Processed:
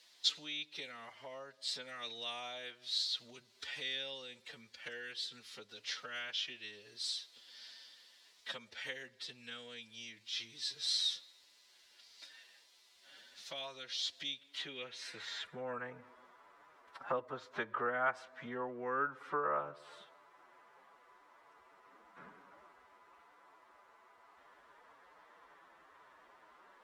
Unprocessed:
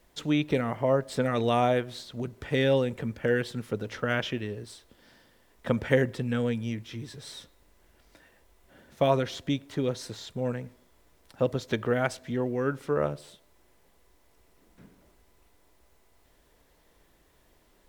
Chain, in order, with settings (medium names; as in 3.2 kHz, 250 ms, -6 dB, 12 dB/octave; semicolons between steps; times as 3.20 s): compression 3:1, threshold -39 dBFS, peak gain reduction 16 dB; time stretch by phase-locked vocoder 1.5×; band-pass sweep 4.3 kHz -> 1.2 kHz, 14.22–15.87 s; trim +13.5 dB